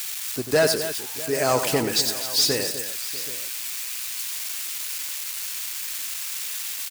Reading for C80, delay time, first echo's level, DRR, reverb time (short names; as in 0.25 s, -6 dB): none, 93 ms, -9.5 dB, none, none